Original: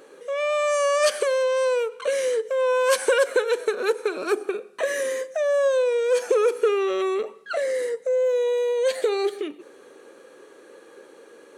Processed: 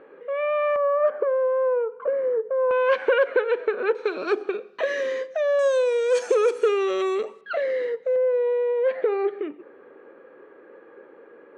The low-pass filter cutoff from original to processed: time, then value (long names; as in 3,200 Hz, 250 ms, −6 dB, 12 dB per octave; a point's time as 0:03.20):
low-pass filter 24 dB per octave
2,300 Hz
from 0:00.76 1,300 Hz
from 0:02.71 2,700 Hz
from 0:03.95 4,500 Hz
from 0:05.59 8,300 Hz
from 0:07.41 3,500 Hz
from 0:08.16 2,100 Hz